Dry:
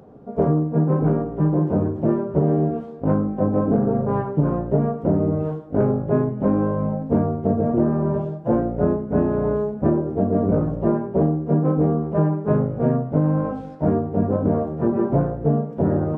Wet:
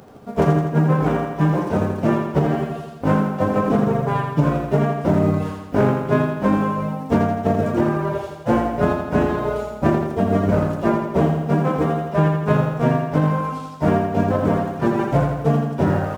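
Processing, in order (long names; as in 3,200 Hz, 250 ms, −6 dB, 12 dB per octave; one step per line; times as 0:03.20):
spectral envelope flattened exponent 0.6
reverb reduction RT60 1.6 s
on a send: repeating echo 83 ms, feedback 60%, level −5 dB
on the sum: level +2 dB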